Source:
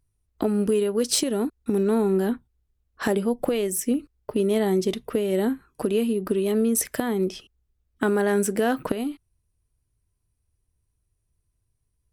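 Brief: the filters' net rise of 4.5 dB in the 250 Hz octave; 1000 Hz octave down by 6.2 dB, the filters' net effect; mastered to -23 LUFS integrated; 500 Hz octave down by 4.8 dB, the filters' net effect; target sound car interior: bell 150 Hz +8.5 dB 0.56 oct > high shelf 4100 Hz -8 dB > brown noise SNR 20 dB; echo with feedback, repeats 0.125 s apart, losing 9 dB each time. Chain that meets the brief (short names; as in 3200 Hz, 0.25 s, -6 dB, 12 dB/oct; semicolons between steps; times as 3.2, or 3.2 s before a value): bell 150 Hz +8.5 dB 0.56 oct; bell 250 Hz +5 dB; bell 500 Hz -8 dB; bell 1000 Hz -5 dB; high shelf 4100 Hz -8 dB; feedback echo 0.125 s, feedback 35%, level -9 dB; brown noise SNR 20 dB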